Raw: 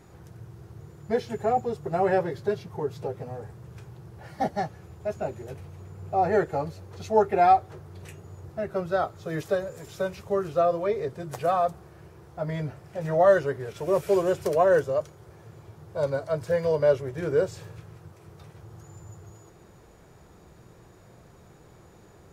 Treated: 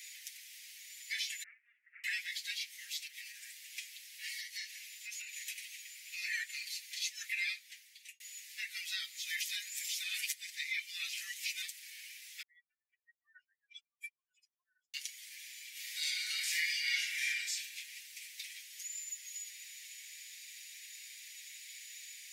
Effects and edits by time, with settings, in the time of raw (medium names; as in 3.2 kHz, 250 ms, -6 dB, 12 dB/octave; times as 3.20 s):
1.43–2.04 s: Gaussian low-pass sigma 6.9 samples
3.07–5.33 s: compression, threshold -34 dBFS
7.27–8.20 s: fade out
10.03–11.62 s: reverse
12.42–14.94 s: spectral contrast enhancement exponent 3.1
15.71–17.28 s: reverb throw, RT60 0.93 s, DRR -9 dB
whole clip: steep high-pass 2 kHz 72 dB/octave; comb 6.8 ms; compression 2:1, threshold -55 dBFS; trim +15 dB